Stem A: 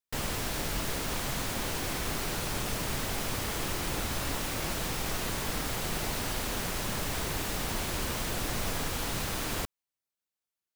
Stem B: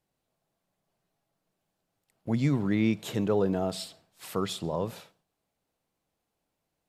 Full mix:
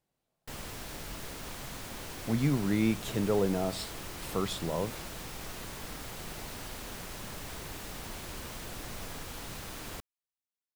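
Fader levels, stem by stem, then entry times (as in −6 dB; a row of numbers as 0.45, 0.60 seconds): −9.0, −2.0 decibels; 0.35, 0.00 seconds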